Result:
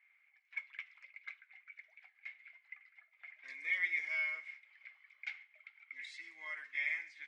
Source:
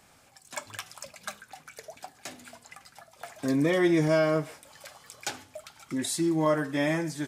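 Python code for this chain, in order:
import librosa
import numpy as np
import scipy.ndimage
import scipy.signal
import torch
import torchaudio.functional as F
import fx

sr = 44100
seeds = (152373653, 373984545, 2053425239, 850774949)

y = fx.env_lowpass(x, sr, base_hz=2000.0, full_db=-21.5)
y = fx.ladder_bandpass(y, sr, hz=2200.0, resonance_pct=90)
y = y * 10.0 ** (-1.5 / 20.0)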